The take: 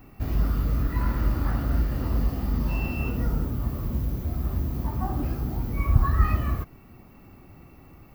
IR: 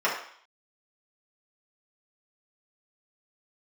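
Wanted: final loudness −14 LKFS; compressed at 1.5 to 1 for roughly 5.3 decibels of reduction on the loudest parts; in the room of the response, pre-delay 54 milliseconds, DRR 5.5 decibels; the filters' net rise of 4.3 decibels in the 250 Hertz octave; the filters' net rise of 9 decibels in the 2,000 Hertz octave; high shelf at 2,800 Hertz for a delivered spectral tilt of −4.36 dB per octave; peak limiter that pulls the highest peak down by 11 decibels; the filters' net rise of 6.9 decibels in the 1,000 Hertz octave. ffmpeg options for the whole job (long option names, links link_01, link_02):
-filter_complex "[0:a]equalizer=frequency=250:width_type=o:gain=5,equalizer=frequency=1000:width_type=o:gain=5,equalizer=frequency=2000:width_type=o:gain=7,highshelf=frequency=2800:gain=7,acompressor=threshold=-27dB:ratio=1.5,alimiter=limit=-21dB:level=0:latency=1,asplit=2[link_01][link_02];[1:a]atrim=start_sample=2205,adelay=54[link_03];[link_02][link_03]afir=irnorm=-1:irlink=0,volume=-20dB[link_04];[link_01][link_04]amix=inputs=2:normalize=0,volume=16.5dB"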